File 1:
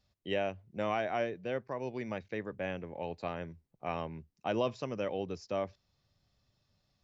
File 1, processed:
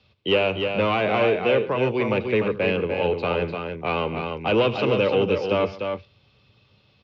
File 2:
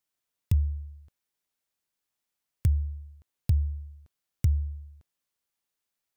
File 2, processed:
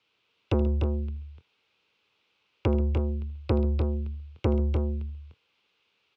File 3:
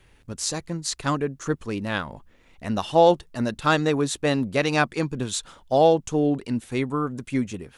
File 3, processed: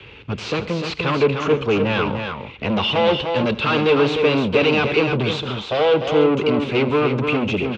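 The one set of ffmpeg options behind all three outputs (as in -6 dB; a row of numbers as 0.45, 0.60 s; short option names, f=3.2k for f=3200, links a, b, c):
-filter_complex "[0:a]highshelf=f=2.2k:g=11.5,acrossover=split=210|430|2100[a][b][c][d];[a]acontrast=46[e];[e][b][c][d]amix=inputs=4:normalize=0,apsyclip=15dB,asoftclip=type=tanh:threshold=-15dB,highpass=120,equalizer=f=160:t=q:w=4:g=-8,equalizer=f=250:t=q:w=4:g=-4,equalizer=f=450:t=q:w=4:g=7,equalizer=f=680:t=q:w=4:g=-6,equalizer=f=1.8k:t=q:w=4:g=-10,equalizer=f=2.6k:t=q:w=4:g=4,lowpass=f=3.2k:w=0.5412,lowpass=f=3.2k:w=1.3066,aecho=1:1:79|135|298|322:0.133|0.126|0.501|0.133"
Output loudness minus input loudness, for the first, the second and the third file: +14.0, +1.5, +5.0 LU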